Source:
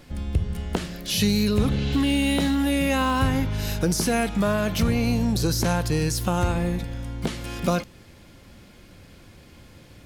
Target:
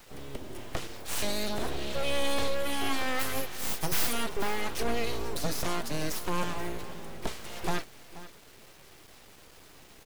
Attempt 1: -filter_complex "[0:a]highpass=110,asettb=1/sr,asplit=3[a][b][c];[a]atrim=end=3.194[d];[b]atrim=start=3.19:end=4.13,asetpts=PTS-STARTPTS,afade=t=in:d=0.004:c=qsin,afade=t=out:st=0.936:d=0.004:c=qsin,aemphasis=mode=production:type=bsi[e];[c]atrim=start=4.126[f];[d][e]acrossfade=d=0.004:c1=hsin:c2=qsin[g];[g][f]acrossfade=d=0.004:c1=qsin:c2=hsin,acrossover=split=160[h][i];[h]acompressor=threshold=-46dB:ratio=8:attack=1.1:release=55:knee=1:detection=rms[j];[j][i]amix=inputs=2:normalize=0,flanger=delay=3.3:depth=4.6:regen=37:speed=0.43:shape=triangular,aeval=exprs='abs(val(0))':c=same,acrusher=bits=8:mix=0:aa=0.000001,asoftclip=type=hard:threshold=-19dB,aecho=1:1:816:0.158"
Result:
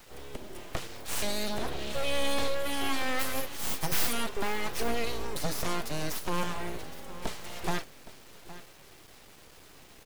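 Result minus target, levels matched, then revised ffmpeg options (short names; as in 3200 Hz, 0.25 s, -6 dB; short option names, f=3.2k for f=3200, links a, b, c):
echo 0.334 s late; compressor: peak gain reduction +10 dB
-filter_complex "[0:a]highpass=110,asettb=1/sr,asplit=3[a][b][c];[a]atrim=end=3.194[d];[b]atrim=start=3.19:end=4.13,asetpts=PTS-STARTPTS,afade=t=in:d=0.004:c=qsin,afade=t=out:st=0.936:d=0.004:c=qsin,aemphasis=mode=production:type=bsi[e];[c]atrim=start=4.126[f];[d][e]acrossfade=d=0.004:c1=hsin:c2=qsin[g];[g][f]acrossfade=d=0.004:c1=qsin:c2=hsin,acrossover=split=160[h][i];[h]acompressor=threshold=-34.5dB:ratio=8:attack=1.1:release=55:knee=1:detection=rms[j];[j][i]amix=inputs=2:normalize=0,flanger=delay=3.3:depth=4.6:regen=37:speed=0.43:shape=triangular,aeval=exprs='abs(val(0))':c=same,acrusher=bits=8:mix=0:aa=0.000001,asoftclip=type=hard:threshold=-19dB,aecho=1:1:482:0.158"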